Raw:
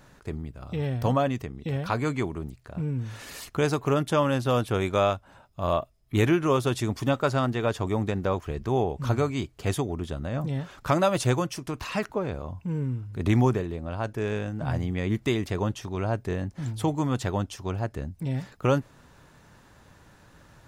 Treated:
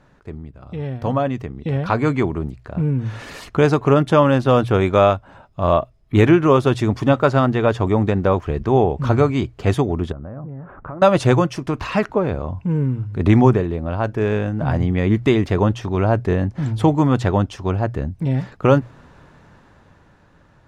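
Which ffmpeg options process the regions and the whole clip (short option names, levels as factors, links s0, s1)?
-filter_complex "[0:a]asettb=1/sr,asplit=3[s0][s1][s2];[s0]atrim=end=10.124[s3];[s1]atrim=start=10.12:end=11.02,asetpts=PTS-STARTPTS,afade=t=in:d=0.004:c=qsin,afade=t=out:st=0.896:d=0.004:c=qsin,lowpass=f=1500:w=0.5412,lowpass=f=1500:w=1.3066,bandreject=f=920:w=27,acompressor=threshold=0.01:ratio=5:attack=3.2:release=140:knee=1:detection=peak[s4];[s2]atrim=start=11.016[s5];[s3][s4]acrossfade=d=0.004:c1=hsin:c2=qsin[s6];[s6][s5]acrossfade=d=0.004:c1=qsin:c2=hsin,aemphasis=mode=reproduction:type=75fm,bandreject=f=60:t=h:w=6,bandreject=f=120:t=h:w=6,dynaudnorm=f=240:g=13:m=3.98"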